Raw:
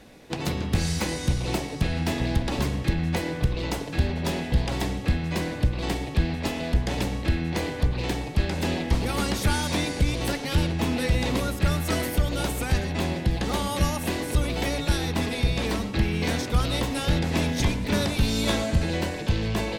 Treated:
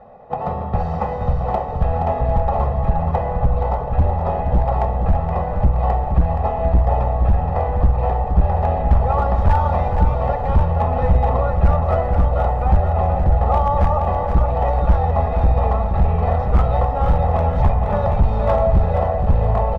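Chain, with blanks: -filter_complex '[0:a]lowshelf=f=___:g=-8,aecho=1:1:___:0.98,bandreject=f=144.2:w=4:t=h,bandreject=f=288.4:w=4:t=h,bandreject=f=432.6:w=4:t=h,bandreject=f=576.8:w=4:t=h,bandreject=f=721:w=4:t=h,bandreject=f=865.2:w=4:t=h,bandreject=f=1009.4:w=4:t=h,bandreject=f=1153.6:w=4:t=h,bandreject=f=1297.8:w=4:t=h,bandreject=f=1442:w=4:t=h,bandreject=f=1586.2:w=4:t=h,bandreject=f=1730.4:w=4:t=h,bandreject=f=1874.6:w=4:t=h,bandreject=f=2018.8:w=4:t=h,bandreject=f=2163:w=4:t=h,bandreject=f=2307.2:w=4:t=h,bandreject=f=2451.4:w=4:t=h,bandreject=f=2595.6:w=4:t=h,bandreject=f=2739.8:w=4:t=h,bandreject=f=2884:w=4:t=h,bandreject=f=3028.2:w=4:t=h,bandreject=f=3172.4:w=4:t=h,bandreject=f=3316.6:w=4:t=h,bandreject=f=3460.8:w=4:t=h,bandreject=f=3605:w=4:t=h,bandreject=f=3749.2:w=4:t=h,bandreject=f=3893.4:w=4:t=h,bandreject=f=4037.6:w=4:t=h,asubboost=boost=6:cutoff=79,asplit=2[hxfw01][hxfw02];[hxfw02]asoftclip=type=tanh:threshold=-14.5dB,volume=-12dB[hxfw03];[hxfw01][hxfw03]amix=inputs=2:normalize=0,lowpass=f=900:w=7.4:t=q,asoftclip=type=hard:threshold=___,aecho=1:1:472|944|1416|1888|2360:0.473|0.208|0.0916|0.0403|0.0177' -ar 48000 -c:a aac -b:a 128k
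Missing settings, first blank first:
110, 1.6, -9.5dB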